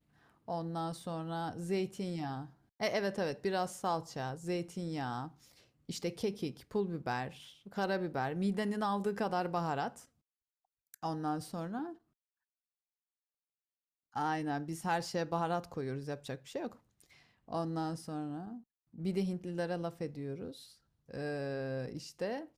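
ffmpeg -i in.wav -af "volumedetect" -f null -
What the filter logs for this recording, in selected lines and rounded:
mean_volume: -38.1 dB
max_volume: -21.5 dB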